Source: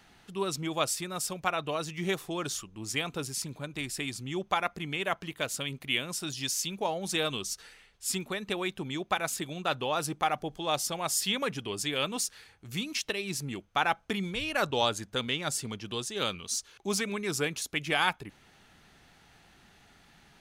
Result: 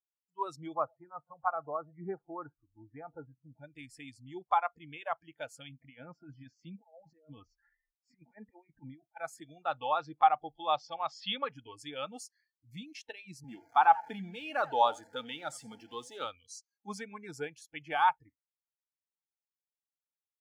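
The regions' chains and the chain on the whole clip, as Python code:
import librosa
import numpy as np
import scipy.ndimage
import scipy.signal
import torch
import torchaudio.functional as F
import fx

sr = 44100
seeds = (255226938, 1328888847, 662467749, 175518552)

y = fx.chain(x, sr, fx.lowpass(hz=1600.0, slope=24),
    fx.echo_single(ms=117, db=-23.0), at=(0.74, 3.57))
y = fx.chain(y, sr, fx.lowpass(hz=1800.0, slope=12),
    fx.over_compress(threshold_db=-38.0, ratio=-0.5), at=(5.8, 9.17))
y = fx.chain(y, sr, fx.lowpass(hz=4400.0, slope=24),
    fx.high_shelf(hz=2700.0, db=8.5), at=(9.79, 11.53))
y = fx.chain(y, sr, fx.zero_step(step_db=-35.5),
    fx.highpass(hz=180.0, slope=12),
    fx.echo_warbled(ms=86, feedback_pct=31, rate_hz=2.8, cents=166, wet_db=-14.0), at=(13.44, 16.25))
y = fx.noise_reduce_blind(y, sr, reduce_db=23)
y = fx.peak_eq(y, sr, hz=960.0, db=11.0, octaves=1.0)
y = fx.spectral_expand(y, sr, expansion=1.5)
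y = y * librosa.db_to_amplitude(-4.5)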